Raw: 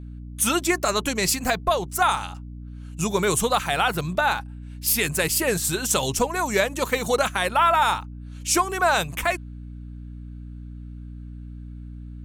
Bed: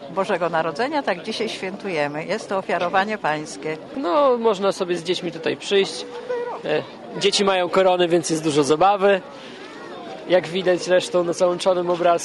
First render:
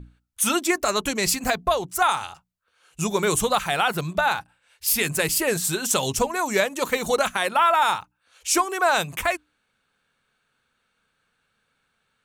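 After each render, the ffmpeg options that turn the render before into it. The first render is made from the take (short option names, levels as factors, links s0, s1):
-af "bandreject=f=60:t=h:w=6,bandreject=f=120:t=h:w=6,bandreject=f=180:t=h:w=6,bandreject=f=240:t=h:w=6,bandreject=f=300:t=h:w=6"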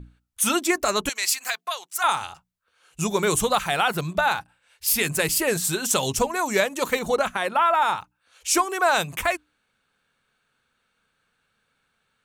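-filter_complex "[0:a]asettb=1/sr,asplit=3[s0][s1][s2];[s0]atrim=end=1.094[s3];[s1]atrim=start=1.09:end=2.04,asetpts=PTS-STARTPTS,afade=t=in:d=0.004:c=qsin,afade=t=out:st=0.946:d=0.004:c=qsin,highpass=1400[s4];[s2]atrim=start=2.036[s5];[s3][s4]acrossfade=d=0.004:c1=hsin:c2=qsin[s6];[s6][s5]acrossfade=d=0.004:c1=qsin:c2=hsin,asettb=1/sr,asplit=3[s7][s8][s9];[s7]atrim=end=6.994[s10];[s8]atrim=start=6.99:end=7.98,asetpts=PTS-STARTPTS,afade=t=in:d=0.004:c=qsin,afade=t=out:st=0.986:d=0.004:c=qsin,highshelf=f=2900:g=-8.5[s11];[s9]atrim=start=7.976[s12];[s10][s11]acrossfade=d=0.004:c1=hsin:c2=qsin[s13];[s13][s12]acrossfade=d=0.004:c1=qsin:c2=hsin"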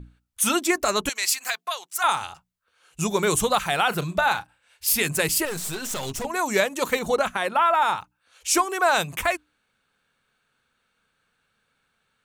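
-filter_complex "[0:a]asettb=1/sr,asplit=3[s0][s1][s2];[s0]atrim=end=3.884[s3];[s1]atrim=start=3.88:end=4.95,asetpts=PTS-STARTPTS,afade=t=in:d=0.004:c=qsin,afade=t=out:st=1.066:d=0.004:c=qsin,asplit=2[s4][s5];[s5]adelay=36,volume=0.211[s6];[s4][s6]amix=inputs=2:normalize=0,atrim=end_sample=47187[s7];[s2]atrim=start=4.946[s8];[s3][s7]acrossfade=d=0.004:c1=hsin:c2=qsin[s9];[s9][s8]acrossfade=d=0.004:c1=qsin:c2=hsin,asettb=1/sr,asplit=3[s10][s11][s12];[s10]atrim=end=5.454[s13];[s11]atrim=start=5.45:end=6.25,asetpts=PTS-STARTPTS,afade=t=in:d=0.004:c=qsin,afade=t=out:st=0.796:d=0.004:c=qsin,aeval=exprs='(tanh(22.4*val(0)+0.55)-tanh(0.55))/22.4':c=same[s14];[s12]atrim=start=6.246[s15];[s13][s14]acrossfade=d=0.004:c1=hsin:c2=qsin[s16];[s16][s15]acrossfade=d=0.004:c1=qsin:c2=hsin"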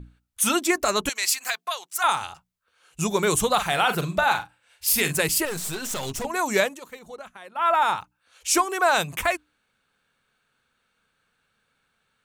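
-filter_complex "[0:a]asettb=1/sr,asplit=3[s0][s1][s2];[s0]atrim=end=3.534[s3];[s1]atrim=start=3.53:end=5.19,asetpts=PTS-STARTPTS,afade=t=in:d=0.004:c=qsin,afade=t=out:st=1.656:d=0.004:c=qsin,asplit=2[s4][s5];[s5]adelay=43,volume=0.355[s6];[s4][s6]amix=inputs=2:normalize=0,atrim=end_sample=73206[s7];[s2]atrim=start=5.186[s8];[s3][s7]acrossfade=d=0.004:c1=hsin:c2=qsin[s9];[s9][s8]acrossfade=d=0.004:c1=qsin:c2=hsin,asplit=3[s10][s11][s12];[s10]atrim=end=6.8,asetpts=PTS-STARTPTS,afade=t=out:st=6.67:d=0.13:silence=0.133352[s13];[s11]atrim=start=6.8:end=7.55,asetpts=PTS-STARTPTS,volume=0.133[s14];[s12]atrim=start=7.55,asetpts=PTS-STARTPTS,afade=t=in:d=0.13:silence=0.133352[s15];[s13][s14][s15]concat=n=3:v=0:a=1"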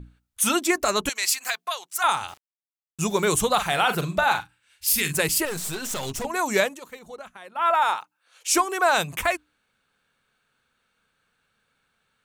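-filter_complex "[0:a]asettb=1/sr,asplit=3[s0][s1][s2];[s0]atrim=end=2.284[s3];[s1]atrim=start=2.28:end=3.41,asetpts=PTS-STARTPTS,afade=t=in:d=0.004:c=qsin,afade=t=out:st=1.126:d=0.004:c=qsin,aeval=exprs='val(0)*gte(abs(val(0)),0.0075)':c=same[s4];[s2]atrim=start=3.406[s5];[s3][s4]acrossfade=d=0.004:c1=hsin:c2=qsin[s6];[s6][s5]acrossfade=d=0.004:c1=qsin:c2=hsin,asettb=1/sr,asplit=3[s7][s8][s9];[s7]atrim=end=4.404[s10];[s8]atrim=start=4.4:end=5.14,asetpts=PTS-STARTPTS,afade=t=in:d=0.004:c=qsin,afade=t=out:st=0.736:d=0.004:c=qsin,equalizer=f=640:w=1.1:g=-14[s11];[s9]atrim=start=5.136[s12];[s10][s11]acrossfade=d=0.004:c1=hsin:c2=qsin[s13];[s13][s12]acrossfade=d=0.004:c1=qsin:c2=hsin,asettb=1/sr,asplit=3[s14][s15][s16];[s14]atrim=end=7.704[s17];[s15]atrim=start=7.7:end=8.48,asetpts=PTS-STARTPTS,afade=t=in:d=0.004:c=qsin,afade=t=out:st=0.776:d=0.004:c=qsin,highpass=400[s18];[s16]atrim=start=8.476[s19];[s17][s18]acrossfade=d=0.004:c1=hsin:c2=qsin[s20];[s20][s19]acrossfade=d=0.004:c1=qsin:c2=hsin"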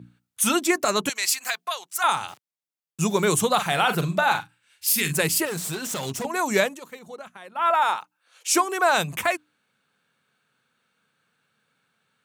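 -af "highpass=f=110:w=0.5412,highpass=f=110:w=1.3066,equalizer=f=160:t=o:w=1.5:g=3.5"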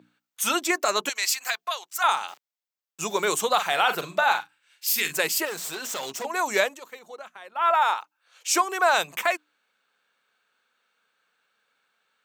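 -af "highpass=450,equalizer=f=10000:t=o:w=0.3:g=-11"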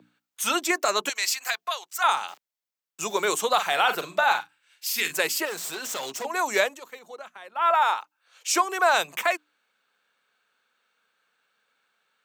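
-filter_complex "[0:a]acrossover=split=190|720|6600[s0][s1][s2][s3];[s0]acompressor=threshold=0.00141:ratio=6[s4];[s3]alimiter=limit=0.0891:level=0:latency=1:release=147[s5];[s4][s1][s2][s5]amix=inputs=4:normalize=0"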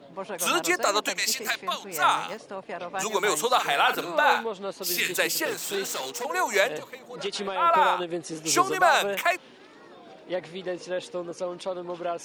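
-filter_complex "[1:a]volume=0.211[s0];[0:a][s0]amix=inputs=2:normalize=0"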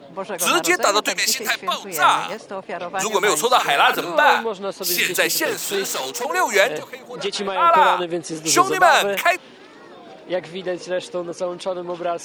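-af "volume=2.11,alimiter=limit=0.708:level=0:latency=1"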